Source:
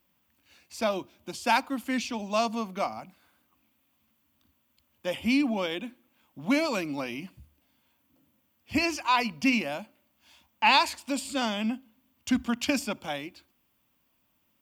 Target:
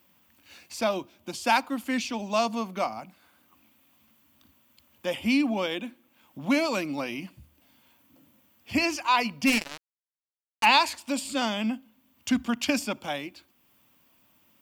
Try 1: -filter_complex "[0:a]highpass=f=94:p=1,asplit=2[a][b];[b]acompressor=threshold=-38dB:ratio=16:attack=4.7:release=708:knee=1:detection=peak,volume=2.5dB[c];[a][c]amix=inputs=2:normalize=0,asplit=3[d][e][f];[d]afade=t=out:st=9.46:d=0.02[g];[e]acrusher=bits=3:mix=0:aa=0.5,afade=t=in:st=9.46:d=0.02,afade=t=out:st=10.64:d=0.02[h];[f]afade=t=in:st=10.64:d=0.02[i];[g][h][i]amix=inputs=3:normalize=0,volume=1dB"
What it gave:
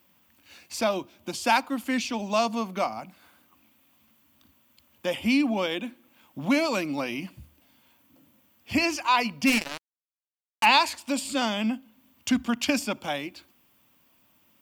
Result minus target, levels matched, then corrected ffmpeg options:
compressor: peak gain reduction -11 dB
-filter_complex "[0:a]highpass=f=94:p=1,asplit=2[a][b];[b]acompressor=threshold=-49.5dB:ratio=16:attack=4.7:release=708:knee=1:detection=peak,volume=2.5dB[c];[a][c]amix=inputs=2:normalize=0,asplit=3[d][e][f];[d]afade=t=out:st=9.46:d=0.02[g];[e]acrusher=bits=3:mix=0:aa=0.5,afade=t=in:st=9.46:d=0.02,afade=t=out:st=10.64:d=0.02[h];[f]afade=t=in:st=10.64:d=0.02[i];[g][h][i]amix=inputs=3:normalize=0,volume=1dB"

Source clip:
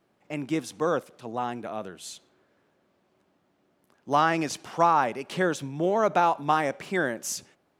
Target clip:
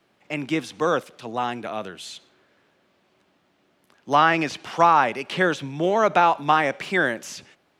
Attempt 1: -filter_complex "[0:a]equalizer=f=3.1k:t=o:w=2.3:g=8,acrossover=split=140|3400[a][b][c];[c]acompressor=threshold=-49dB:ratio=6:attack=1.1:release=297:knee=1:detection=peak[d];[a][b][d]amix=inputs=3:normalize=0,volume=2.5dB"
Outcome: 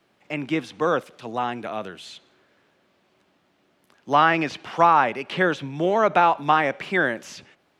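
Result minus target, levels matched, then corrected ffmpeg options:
compressor: peak gain reduction +8.5 dB
-filter_complex "[0:a]equalizer=f=3.1k:t=o:w=2.3:g=8,acrossover=split=140|3400[a][b][c];[c]acompressor=threshold=-39dB:ratio=6:attack=1.1:release=297:knee=1:detection=peak[d];[a][b][d]amix=inputs=3:normalize=0,volume=2.5dB"

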